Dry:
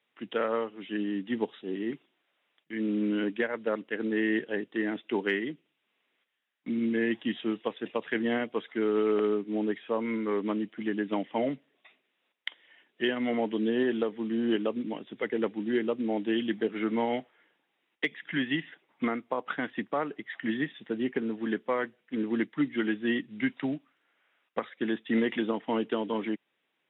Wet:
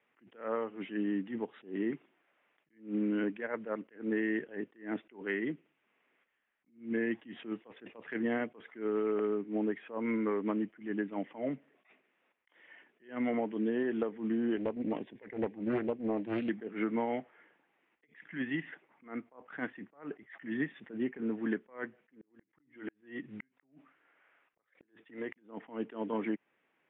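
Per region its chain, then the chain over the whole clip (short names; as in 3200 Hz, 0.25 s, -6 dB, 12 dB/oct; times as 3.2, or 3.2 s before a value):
14.57–16.49 Butterworth band-stop 1300 Hz, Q 2.9 + Doppler distortion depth 0.42 ms
22.21–25.36 bell 220 Hz -9 dB 0.21 oct + compressor 8:1, threshold -38 dBFS + flipped gate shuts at -32 dBFS, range -38 dB
whole clip: LPF 2400 Hz 24 dB/oct; compressor, threshold -33 dBFS; attack slew limiter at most 180 dB/s; gain +4 dB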